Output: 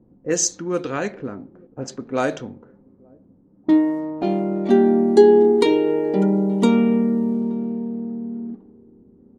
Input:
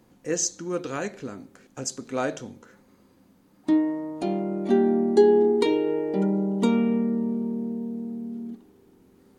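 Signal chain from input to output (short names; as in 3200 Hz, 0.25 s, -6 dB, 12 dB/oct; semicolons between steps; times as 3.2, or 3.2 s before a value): outdoor echo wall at 150 m, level -26 dB; low-pass opened by the level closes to 400 Hz, open at -22 dBFS; gain +5.5 dB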